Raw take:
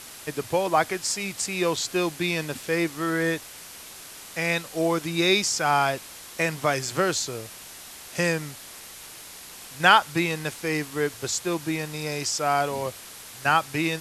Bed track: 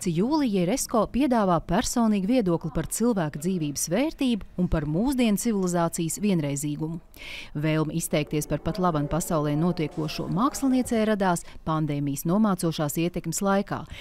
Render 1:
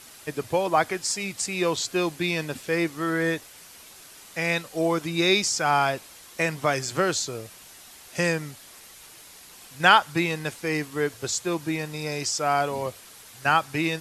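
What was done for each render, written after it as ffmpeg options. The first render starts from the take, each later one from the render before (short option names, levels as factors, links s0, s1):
-af "afftdn=nr=6:nf=-43"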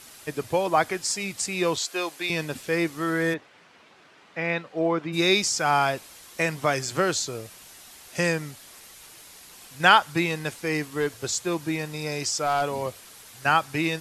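-filter_complex "[0:a]asettb=1/sr,asplit=3[s0][s1][s2];[s0]atrim=end=1.784[s3];[s1]atrim=start=1.78:end=2.3,asetpts=PTS-STARTPTS,afade=t=in:d=0.004:c=qsin,afade=t=out:st=0.516:d=0.004:c=qsin,highpass=490[s4];[s2]atrim=start=2.296[s5];[s3][s4]acrossfade=d=0.004:c1=hsin:c2=qsin[s6];[s6][s5]acrossfade=d=0.004:c1=qsin:c2=hsin,asplit=3[s7][s8][s9];[s7]afade=t=out:st=3.33:d=0.02[s10];[s8]highpass=140,lowpass=2400,afade=t=in:st=3.33:d=0.02,afade=t=out:st=5.12:d=0.02[s11];[s9]afade=t=in:st=5.12:d=0.02[s12];[s10][s11][s12]amix=inputs=3:normalize=0,asettb=1/sr,asplit=3[s13][s14][s15];[s13]atrim=end=10.814[s16];[s14]atrim=start=10.81:end=12.63,asetpts=PTS-STARTPTS,afade=t=in:d=0.004:c=qsin,afade=t=out:st=1.816:d=0.004:c=qsin,asoftclip=type=hard:threshold=0.133[s17];[s15]atrim=start=12.626[s18];[s16][s17]acrossfade=d=0.004:c1=hsin:c2=qsin[s19];[s19][s18]acrossfade=d=0.004:c1=qsin:c2=hsin"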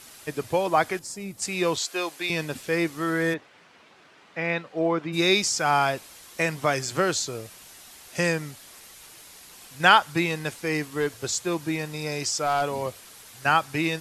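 -filter_complex "[0:a]asettb=1/sr,asplit=3[s0][s1][s2];[s0]atrim=end=0.994[s3];[s1]atrim=start=0.99:end=1.42,asetpts=PTS-STARTPTS,afade=t=in:d=0.004:c=qsin,afade=t=out:st=0.426:d=0.004:c=qsin,equalizer=f=3300:w=0.32:g=-13.5[s4];[s2]atrim=start=1.416[s5];[s3][s4]acrossfade=d=0.004:c1=hsin:c2=qsin[s6];[s6][s5]acrossfade=d=0.004:c1=qsin:c2=hsin"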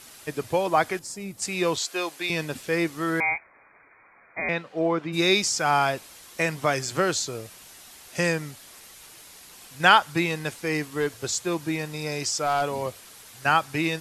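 -filter_complex "[0:a]asettb=1/sr,asplit=3[s0][s1][s2];[s0]atrim=end=3.204[s3];[s1]atrim=start=3.2:end=4.49,asetpts=PTS-STARTPTS,afade=t=in:d=0.004:c=qsin,afade=t=out:st=1.286:d=0.004:c=qsin,lowpass=f=2200:t=q:w=0.5098,lowpass=f=2200:t=q:w=0.6013,lowpass=f=2200:t=q:w=0.9,lowpass=f=2200:t=q:w=2.563,afreqshift=-2600[s4];[s2]atrim=start=4.486[s5];[s3][s4]acrossfade=d=0.004:c1=hsin:c2=qsin[s6];[s6][s5]acrossfade=d=0.004:c1=qsin:c2=hsin"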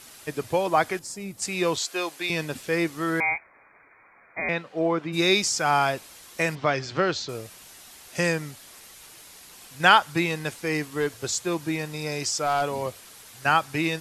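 -filter_complex "[0:a]asettb=1/sr,asplit=3[s0][s1][s2];[s0]atrim=end=6.554[s3];[s1]atrim=start=6.55:end=7.29,asetpts=PTS-STARTPTS,afade=t=in:d=0.004:c=qsin,afade=t=out:st=0.736:d=0.004:c=qsin,lowpass=f=5000:w=0.5412,lowpass=f=5000:w=1.3066[s4];[s2]atrim=start=7.286[s5];[s3][s4]acrossfade=d=0.004:c1=hsin:c2=qsin[s6];[s6][s5]acrossfade=d=0.004:c1=qsin:c2=hsin"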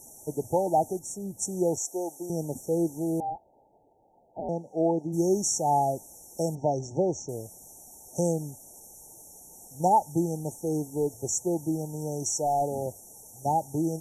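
-af "afftfilt=real='re*(1-between(b*sr/4096,920,5500))':imag='im*(1-between(b*sr/4096,920,5500))':win_size=4096:overlap=0.75,adynamicequalizer=threshold=0.00891:dfrequency=490:dqfactor=3.2:tfrequency=490:tqfactor=3.2:attack=5:release=100:ratio=0.375:range=2.5:mode=cutabove:tftype=bell"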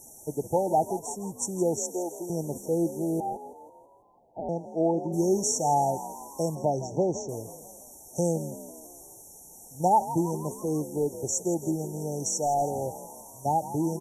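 -filter_complex "[0:a]asplit=6[s0][s1][s2][s3][s4][s5];[s1]adelay=164,afreqshift=46,volume=0.211[s6];[s2]adelay=328,afreqshift=92,volume=0.112[s7];[s3]adelay=492,afreqshift=138,volume=0.0596[s8];[s4]adelay=656,afreqshift=184,volume=0.0316[s9];[s5]adelay=820,afreqshift=230,volume=0.0166[s10];[s0][s6][s7][s8][s9][s10]amix=inputs=6:normalize=0"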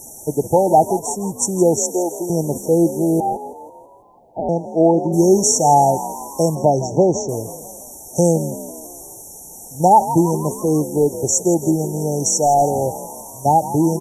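-af "volume=3.76,alimiter=limit=0.794:level=0:latency=1"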